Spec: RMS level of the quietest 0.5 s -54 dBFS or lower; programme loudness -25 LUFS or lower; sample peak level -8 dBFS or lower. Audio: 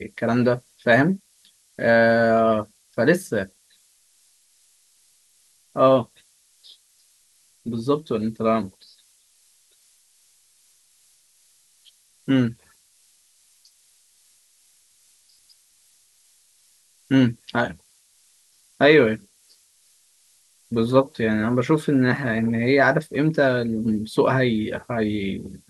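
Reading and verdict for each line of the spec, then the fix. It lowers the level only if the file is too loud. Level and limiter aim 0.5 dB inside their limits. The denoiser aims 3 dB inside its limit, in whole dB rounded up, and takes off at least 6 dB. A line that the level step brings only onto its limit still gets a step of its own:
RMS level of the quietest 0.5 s -60 dBFS: OK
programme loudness -21.0 LUFS: fail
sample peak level -3.0 dBFS: fail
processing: gain -4.5 dB; limiter -8.5 dBFS

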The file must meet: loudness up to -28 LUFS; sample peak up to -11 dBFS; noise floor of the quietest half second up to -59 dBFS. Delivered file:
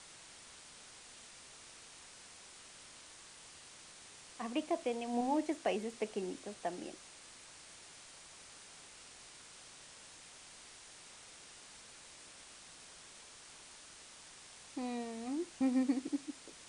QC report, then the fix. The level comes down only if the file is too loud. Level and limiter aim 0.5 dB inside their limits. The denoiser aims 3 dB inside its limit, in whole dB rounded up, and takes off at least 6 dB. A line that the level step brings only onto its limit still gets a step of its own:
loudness -43.0 LUFS: OK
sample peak -21.5 dBFS: OK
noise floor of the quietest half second -56 dBFS: fail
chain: denoiser 6 dB, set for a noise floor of -56 dBFS

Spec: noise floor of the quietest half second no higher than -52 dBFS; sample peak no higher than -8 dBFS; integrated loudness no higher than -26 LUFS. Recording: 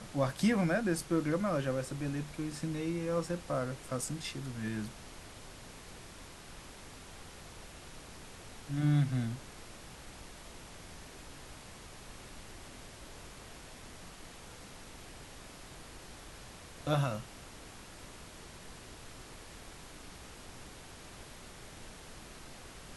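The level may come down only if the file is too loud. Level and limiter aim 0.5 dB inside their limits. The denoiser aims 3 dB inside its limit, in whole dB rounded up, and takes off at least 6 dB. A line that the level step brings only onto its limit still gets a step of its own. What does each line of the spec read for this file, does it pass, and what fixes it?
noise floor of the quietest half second -50 dBFS: fail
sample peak -18.0 dBFS: OK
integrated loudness -34.0 LUFS: OK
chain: denoiser 6 dB, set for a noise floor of -50 dBFS

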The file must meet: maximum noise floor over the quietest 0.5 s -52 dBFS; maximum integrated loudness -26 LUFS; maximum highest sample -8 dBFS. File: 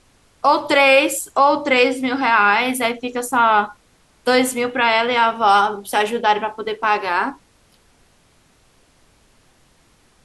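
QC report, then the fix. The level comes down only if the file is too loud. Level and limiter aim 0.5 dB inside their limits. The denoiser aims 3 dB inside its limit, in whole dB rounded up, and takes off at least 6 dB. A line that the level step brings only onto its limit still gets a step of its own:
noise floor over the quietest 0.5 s -56 dBFS: OK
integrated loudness -17.0 LUFS: fail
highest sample -2.5 dBFS: fail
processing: gain -9.5 dB

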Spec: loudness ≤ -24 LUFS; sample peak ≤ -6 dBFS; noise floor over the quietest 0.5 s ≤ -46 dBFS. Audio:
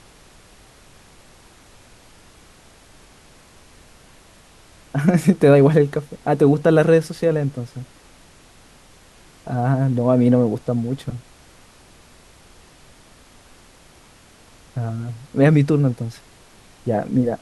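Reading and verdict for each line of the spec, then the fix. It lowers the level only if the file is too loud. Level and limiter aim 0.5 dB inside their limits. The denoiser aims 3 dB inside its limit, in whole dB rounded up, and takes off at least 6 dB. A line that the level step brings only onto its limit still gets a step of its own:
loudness -18.5 LUFS: fail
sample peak -3.0 dBFS: fail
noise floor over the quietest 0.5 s -49 dBFS: OK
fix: gain -6 dB

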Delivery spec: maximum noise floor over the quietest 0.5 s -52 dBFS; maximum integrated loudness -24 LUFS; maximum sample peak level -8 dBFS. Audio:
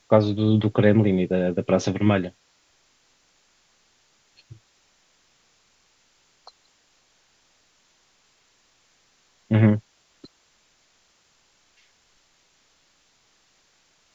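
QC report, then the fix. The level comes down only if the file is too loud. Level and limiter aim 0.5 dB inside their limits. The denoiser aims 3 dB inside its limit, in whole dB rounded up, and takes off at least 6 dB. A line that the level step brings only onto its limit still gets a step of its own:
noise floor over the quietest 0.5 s -64 dBFS: OK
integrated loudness -21.5 LUFS: fail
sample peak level -3.5 dBFS: fail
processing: gain -3 dB; limiter -8.5 dBFS

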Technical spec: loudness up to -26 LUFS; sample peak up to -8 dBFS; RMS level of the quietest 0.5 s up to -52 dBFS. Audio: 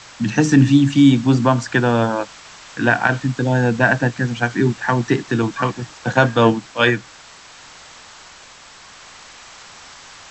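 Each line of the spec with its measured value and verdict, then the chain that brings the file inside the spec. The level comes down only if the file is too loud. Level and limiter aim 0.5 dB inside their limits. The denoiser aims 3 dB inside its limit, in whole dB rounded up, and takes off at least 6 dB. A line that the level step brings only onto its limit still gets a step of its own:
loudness -17.0 LUFS: fail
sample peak -2.0 dBFS: fail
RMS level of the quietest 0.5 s -43 dBFS: fail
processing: gain -9.5 dB

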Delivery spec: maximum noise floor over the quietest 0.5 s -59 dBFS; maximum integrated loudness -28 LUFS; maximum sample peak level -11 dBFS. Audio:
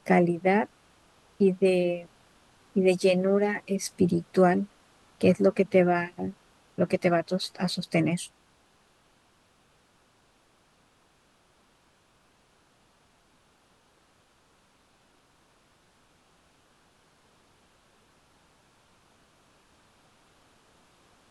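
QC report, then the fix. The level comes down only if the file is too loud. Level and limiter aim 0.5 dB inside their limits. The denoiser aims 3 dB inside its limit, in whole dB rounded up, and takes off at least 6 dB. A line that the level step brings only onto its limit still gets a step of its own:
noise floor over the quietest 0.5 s -64 dBFS: OK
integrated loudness -25.5 LUFS: fail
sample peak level -8.5 dBFS: fail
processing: gain -3 dB

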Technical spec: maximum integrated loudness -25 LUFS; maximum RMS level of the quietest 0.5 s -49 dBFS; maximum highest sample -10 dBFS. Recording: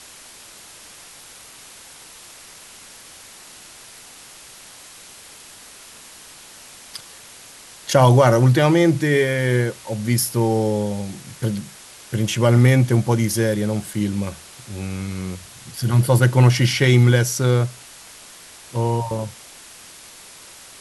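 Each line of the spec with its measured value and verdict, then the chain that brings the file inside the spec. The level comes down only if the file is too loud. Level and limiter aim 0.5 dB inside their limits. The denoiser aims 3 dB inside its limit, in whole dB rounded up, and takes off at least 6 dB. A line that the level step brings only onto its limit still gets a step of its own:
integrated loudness -18.5 LUFS: fail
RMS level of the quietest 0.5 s -43 dBFS: fail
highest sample -4.0 dBFS: fail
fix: gain -7 dB

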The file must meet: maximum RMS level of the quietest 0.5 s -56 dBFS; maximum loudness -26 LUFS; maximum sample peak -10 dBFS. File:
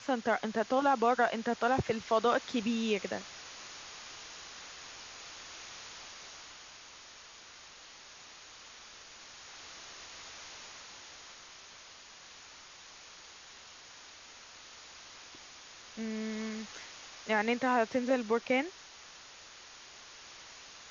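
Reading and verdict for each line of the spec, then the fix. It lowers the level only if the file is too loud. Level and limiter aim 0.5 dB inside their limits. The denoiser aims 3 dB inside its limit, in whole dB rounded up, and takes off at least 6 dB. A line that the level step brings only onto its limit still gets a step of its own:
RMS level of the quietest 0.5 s -53 dBFS: fail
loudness -34.0 LUFS: OK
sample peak -15.0 dBFS: OK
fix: denoiser 6 dB, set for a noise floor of -53 dBFS

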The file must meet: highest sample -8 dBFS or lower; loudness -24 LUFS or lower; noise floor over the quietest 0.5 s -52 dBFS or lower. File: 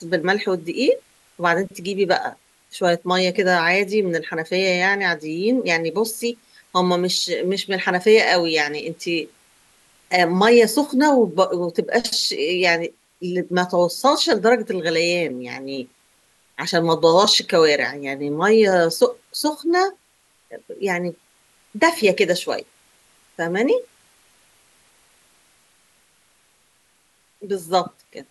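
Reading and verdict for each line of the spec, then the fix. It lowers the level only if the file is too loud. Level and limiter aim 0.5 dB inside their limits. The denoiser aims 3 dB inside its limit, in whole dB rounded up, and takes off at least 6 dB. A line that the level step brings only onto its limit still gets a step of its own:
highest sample -3.5 dBFS: fail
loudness -19.5 LUFS: fail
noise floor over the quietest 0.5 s -61 dBFS: OK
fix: gain -5 dB

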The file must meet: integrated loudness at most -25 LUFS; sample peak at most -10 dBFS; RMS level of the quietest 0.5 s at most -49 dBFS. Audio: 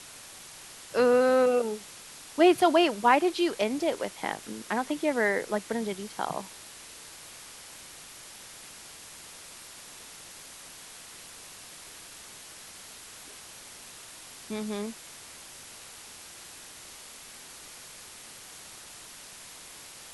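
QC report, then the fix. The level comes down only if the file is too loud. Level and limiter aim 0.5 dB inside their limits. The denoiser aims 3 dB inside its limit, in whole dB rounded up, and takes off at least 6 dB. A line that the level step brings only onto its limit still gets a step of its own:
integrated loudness -26.5 LUFS: OK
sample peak -8.0 dBFS: fail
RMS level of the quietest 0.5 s -47 dBFS: fail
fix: denoiser 6 dB, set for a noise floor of -47 dBFS; limiter -10.5 dBFS

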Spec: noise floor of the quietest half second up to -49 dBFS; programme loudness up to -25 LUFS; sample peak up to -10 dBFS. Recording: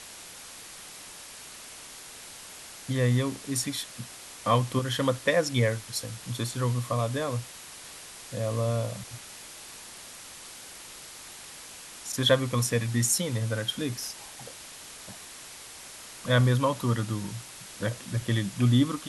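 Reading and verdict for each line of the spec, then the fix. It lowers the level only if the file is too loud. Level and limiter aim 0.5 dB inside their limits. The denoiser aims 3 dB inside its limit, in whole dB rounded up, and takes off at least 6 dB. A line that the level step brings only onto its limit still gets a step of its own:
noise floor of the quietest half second -45 dBFS: fail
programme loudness -28.0 LUFS: OK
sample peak -9.0 dBFS: fail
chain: denoiser 7 dB, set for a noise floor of -45 dBFS; limiter -10.5 dBFS

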